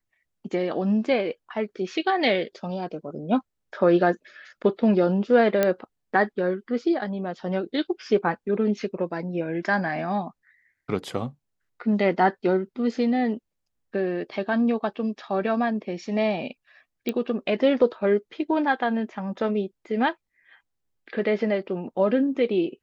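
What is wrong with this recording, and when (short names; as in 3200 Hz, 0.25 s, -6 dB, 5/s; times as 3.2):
5.63 pop -8 dBFS
17.09 pop -13 dBFS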